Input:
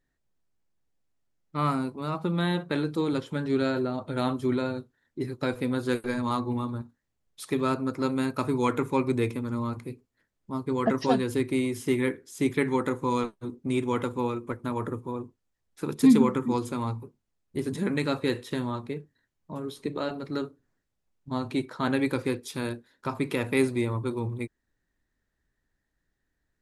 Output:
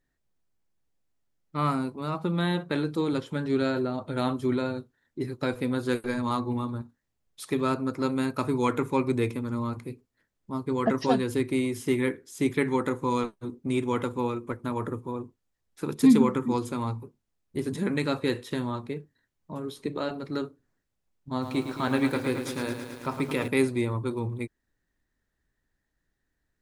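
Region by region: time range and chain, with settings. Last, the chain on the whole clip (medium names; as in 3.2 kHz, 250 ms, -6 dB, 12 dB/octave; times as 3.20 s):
21.30–23.48 s: hum notches 60/120/180/240/300/360/420 Hz + bit-crushed delay 109 ms, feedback 80%, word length 8-bit, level -8.5 dB
whole clip: none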